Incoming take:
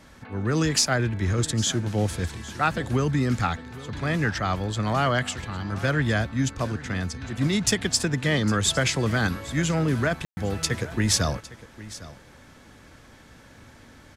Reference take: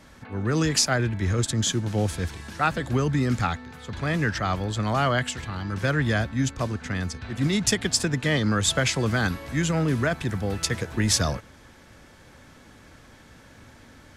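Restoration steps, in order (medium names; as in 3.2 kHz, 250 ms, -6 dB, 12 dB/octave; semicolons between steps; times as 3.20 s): clip repair -11.5 dBFS; room tone fill 10.25–10.37 s; inverse comb 807 ms -17.5 dB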